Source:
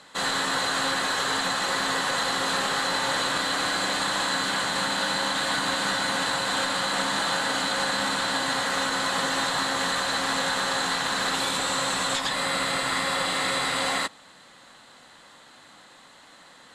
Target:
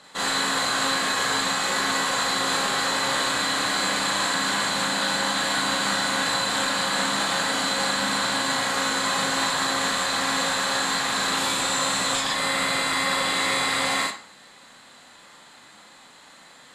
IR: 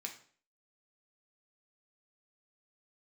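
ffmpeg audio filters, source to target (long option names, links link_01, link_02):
-filter_complex "[0:a]asplit=2[link_01][link_02];[1:a]atrim=start_sample=2205,highshelf=frequency=10000:gain=9.5,adelay=37[link_03];[link_02][link_03]afir=irnorm=-1:irlink=0,volume=1.5dB[link_04];[link_01][link_04]amix=inputs=2:normalize=0,volume=-1dB"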